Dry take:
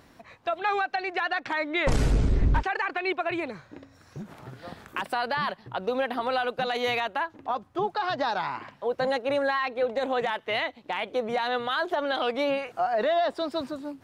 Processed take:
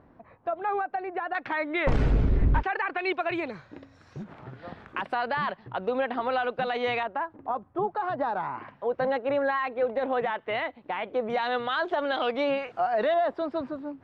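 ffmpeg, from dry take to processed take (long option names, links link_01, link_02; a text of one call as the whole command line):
ffmpeg -i in.wav -af "asetnsamples=nb_out_samples=441:pad=0,asendcmd='1.35 lowpass f 2600;2.99 lowpass f 4900;4.24 lowpass f 2700;7.03 lowpass f 1300;8.58 lowpass f 2100;11.3 lowpass f 3700;13.14 lowpass f 1900',lowpass=1100" out.wav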